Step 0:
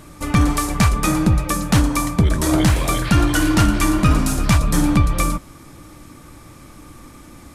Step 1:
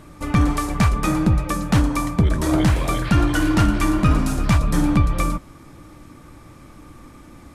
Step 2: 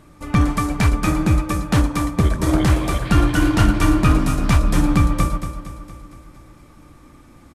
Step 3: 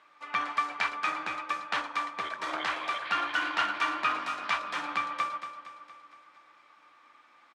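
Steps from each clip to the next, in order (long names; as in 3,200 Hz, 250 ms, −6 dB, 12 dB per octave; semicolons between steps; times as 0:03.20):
high-shelf EQ 3,900 Hz −8 dB; level −1.5 dB
on a send: repeating echo 232 ms, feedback 59%, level −7 dB; on the sum: expander for the loud parts 1.5 to 1, over −25 dBFS; level +2 dB
flat-topped band-pass 1,900 Hz, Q 0.65; level −3 dB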